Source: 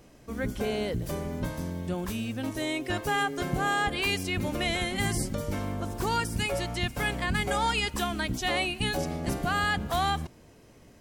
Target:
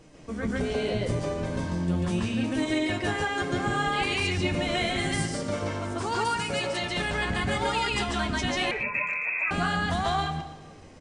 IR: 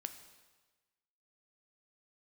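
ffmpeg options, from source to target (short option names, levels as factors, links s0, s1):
-filter_complex "[0:a]asettb=1/sr,asplit=3[s0][s1][s2];[s0]atrim=end=5.134[s3];[s1]atrim=start=5.13:end=6.91,asetpts=PTS-STARTPTS,afade=t=in:d=0.004:c=qsin,afade=t=out:st=1.776:d=0.004:c=qsin,highpass=f=260:p=1[s4];[s2]atrim=start=6.906[s5];[s3][s4]acrossfade=d=0.004:c1=hsin:c2=qsin[s6];[s6][s5]acrossfade=d=0.004:c1=qsin:c2=hsin,acompressor=threshold=0.0282:ratio=2.5,flanger=delay=6.3:depth=5.7:regen=36:speed=0.78:shape=sinusoidal,asplit=2[s7][s8];[1:a]atrim=start_sample=2205,lowpass=6300,adelay=142[s9];[s8][s9]afir=irnorm=-1:irlink=0,volume=1.88[s10];[s7][s10]amix=inputs=2:normalize=0,asettb=1/sr,asplit=3[s11][s12][s13];[s11]atrim=end=8.714[s14];[s12]atrim=start=8.71:end=9.51,asetpts=PTS-STARTPTS,afade=t=in:d=0.004:c=qsin,afade=t=out:st=0.796:d=0.004:c=qsin,lowpass=f=2300:t=q:w=0.5098,lowpass=f=2300:t=q:w=0.6013,lowpass=f=2300:t=q:w=0.9,lowpass=f=2300:t=q:w=2.563,afreqshift=-2700[s15];[s13]atrim=start=9.506[s16];[s14][s15]acrossfade=d=0.004:c1=hsin:c2=qsin[s17];[s17][s16]acrossfade=d=0.004:c1=qsin:c2=hsin,asplit=2[s18][s19];[s19]adelay=120,highpass=300,lowpass=3400,asoftclip=type=hard:threshold=0.0355,volume=0.2[s20];[s18][s20]amix=inputs=2:normalize=0,volume=1.88" -ar 22050 -c:a libmp3lame -b:a 80k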